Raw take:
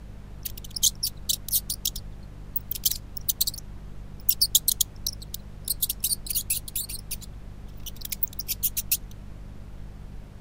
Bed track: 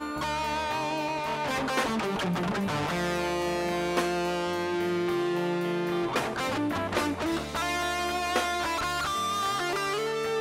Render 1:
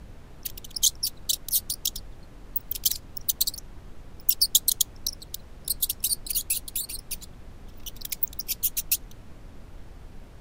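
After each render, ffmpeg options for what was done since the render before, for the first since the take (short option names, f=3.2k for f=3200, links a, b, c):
-af "bandreject=f=50:t=h:w=4,bandreject=f=100:t=h:w=4,bandreject=f=150:t=h:w=4,bandreject=f=200:t=h:w=4"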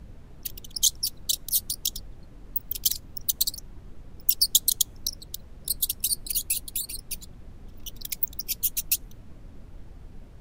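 -af "afftdn=nr=6:nf=-47"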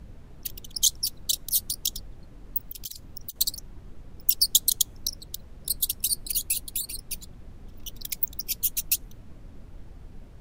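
-filter_complex "[0:a]asettb=1/sr,asplit=3[a][b][c];[a]atrim=end=2.614[d];[b]atrim=start=2.61:end=3.36,asetpts=PTS-STARTPTS,afade=t=in:d=0.004:c=qsin,afade=t=out:st=0.746:d=0.004:c=qsin,acompressor=threshold=-32dB:ratio=10:attack=3.2:release=140:knee=1:detection=peak[e];[c]atrim=start=3.356[f];[d][e]acrossfade=d=0.004:c1=hsin:c2=qsin[g];[g][f]acrossfade=d=0.004:c1=qsin:c2=hsin"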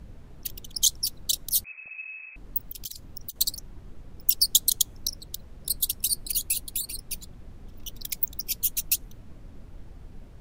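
-filter_complex "[0:a]asettb=1/sr,asplit=3[a][b][c];[a]atrim=end=1.644[d];[b]atrim=start=1.64:end=2.36,asetpts=PTS-STARTPTS,afade=t=in:d=0.004:c=qsin,afade=t=out:st=0.716:d=0.004:c=qsin,lowpass=f=2.2k:t=q:w=0.5098,lowpass=f=2.2k:t=q:w=0.6013,lowpass=f=2.2k:t=q:w=0.9,lowpass=f=2.2k:t=q:w=2.563,afreqshift=-2600[e];[c]atrim=start=2.356[f];[d][e]acrossfade=d=0.004:c1=hsin:c2=qsin[g];[g][f]acrossfade=d=0.004:c1=qsin:c2=hsin"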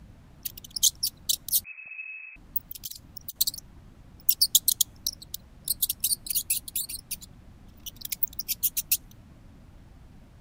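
-af "highpass=f=82:p=1,equalizer=f=430:w=2.4:g=-9"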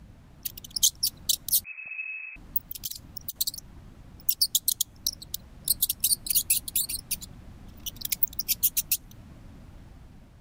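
-af "dynaudnorm=f=290:g=5:m=4dB,alimiter=limit=-10dB:level=0:latency=1:release=279"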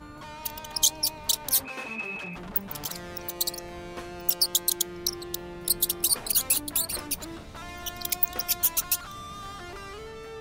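-filter_complex "[1:a]volume=-12dB[a];[0:a][a]amix=inputs=2:normalize=0"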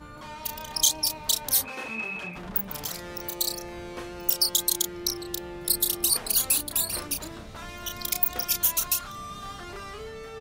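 -filter_complex "[0:a]asplit=2[a][b];[b]adelay=32,volume=-6dB[c];[a][c]amix=inputs=2:normalize=0"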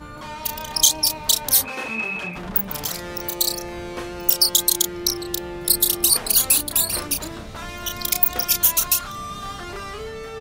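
-af "volume=6.5dB,alimiter=limit=-3dB:level=0:latency=1"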